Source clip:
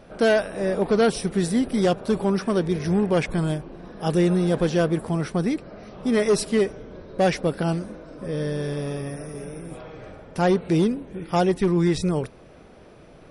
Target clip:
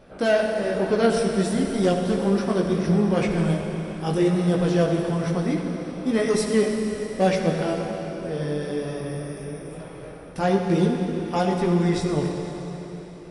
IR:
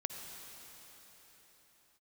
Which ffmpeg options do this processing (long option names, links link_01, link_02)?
-filter_complex "[0:a]flanger=delay=16:depth=5:speed=1.1[link_01];[1:a]atrim=start_sample=2205,asetrate=52920,aresample=44100[link_02];[link_01][link_02]afir=irnorm=-1:irlink=0,volume=4dB"